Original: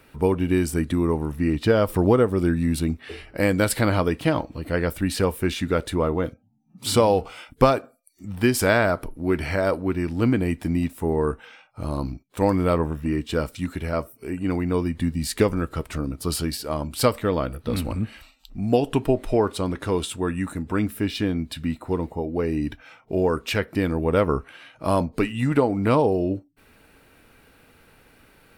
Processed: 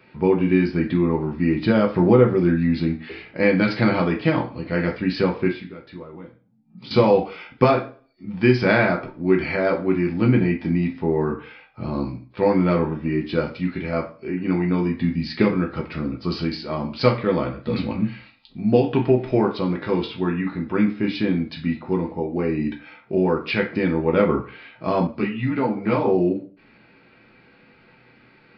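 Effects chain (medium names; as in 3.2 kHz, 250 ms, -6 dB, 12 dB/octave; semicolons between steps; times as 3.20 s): 5.48–6.91 s: compression 10:1, threshold -37 dBFS, peak gain reduction 20 dB; reverberation RT60 0.40 s, pre-delay 3 ms, DRR -0.5 dB; resampled via 11.025 kHz; 25.07–26.07 s: three-phase chorus; trim -3 dB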